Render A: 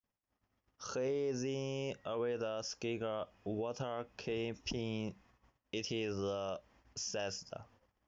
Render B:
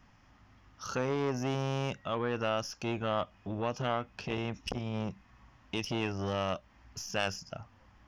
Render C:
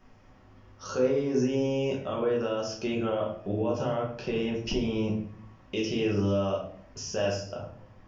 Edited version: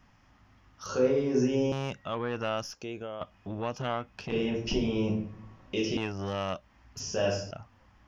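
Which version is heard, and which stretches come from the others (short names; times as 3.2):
B
0.86–1.72 from C
2.75–3.21 from A
4.32–5.97 from C
7–7.51 from C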